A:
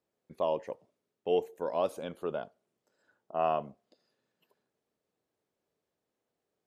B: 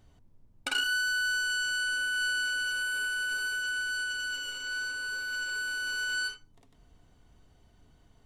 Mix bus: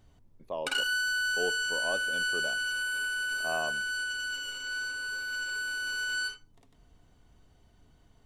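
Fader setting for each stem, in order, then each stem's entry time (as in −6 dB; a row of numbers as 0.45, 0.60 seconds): −5.5, −0.5 decibels; 0.10, 0.00 seconds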